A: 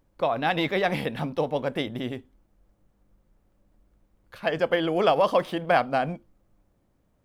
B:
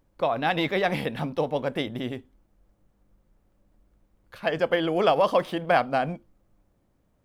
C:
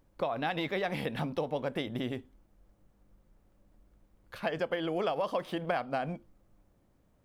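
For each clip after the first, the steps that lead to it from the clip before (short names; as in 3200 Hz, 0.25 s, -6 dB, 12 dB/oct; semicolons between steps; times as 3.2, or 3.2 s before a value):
nothing audible
compressor 4:1, threshold -30 dBFS, peak gain reduction 12 dB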